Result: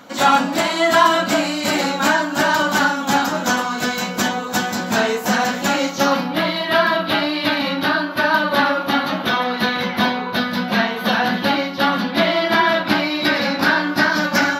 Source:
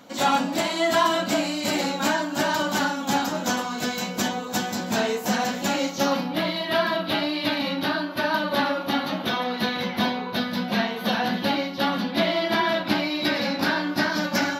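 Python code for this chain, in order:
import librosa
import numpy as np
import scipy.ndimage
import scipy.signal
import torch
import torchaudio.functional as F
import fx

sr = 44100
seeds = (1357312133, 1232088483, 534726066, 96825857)

y = fx.peak_eq(x, sr, hz=1400.0, db=5.5, octaves=1.1)
y = y * 10.0 ** (4.5 / 20.0)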